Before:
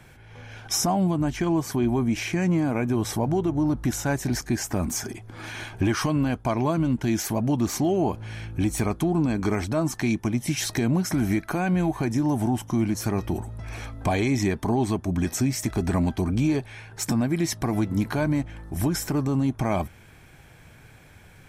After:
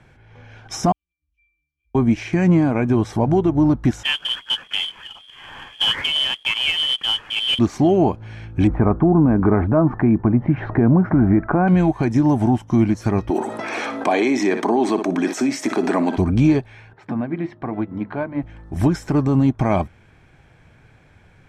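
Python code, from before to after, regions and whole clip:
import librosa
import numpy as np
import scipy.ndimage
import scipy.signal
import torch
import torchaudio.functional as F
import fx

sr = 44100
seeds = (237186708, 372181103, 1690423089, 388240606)

y = fx.chain(x, sr, fx.cheby2_bandstop(low_hz=110.0, high_hz=1100.0, order=4, stop_db=50),
    fx.auto_swell(attack_ms=197.0),
    fx.octave_resonator(note='D', decay_s=0.59), at=(0.92, 1.95))
y = fx.chain(y, sr, fx.freq_invert(carrier_hz=3300),
    fx.quant_companded(bits=4), at=(4.03, 7.59))
y = fx.chain(y, sr, fx.lowpass(hz=1500.0, slope=24),
    fx.env_flatten(amount_pct=50), at=(8.67, 11.68))
y = fx.chain(y, sr, fx.highpass(hz=270.0, slope=24),
    fx.room_flutter(wall_m=10.3, rt60_s=0.24),
    fx.env_flatten(amount_pct=70), at=(13.3, 16.17))
y = fx.chain(y, sr, fx.highpass(hz=280.0, slope=6),
    fx.air_absorb(metres=460.0),
    fx.hum_notches(base_hz=50, count=9), at=(16.93, 18.43))
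y = scipy.signal.sosfilt(scipy.signal.butter(2, 8200.0, 'lowpass', fs=sr, output='sos'), y)
y = fx.high_shelf(y, sr, hz=4000.0, db=-10.0)
y = fx.upward_expand(y, sr, threshold_db=-38.0, expansion=1.5)
y = y * 10.0 ** (8.5 / 20.0)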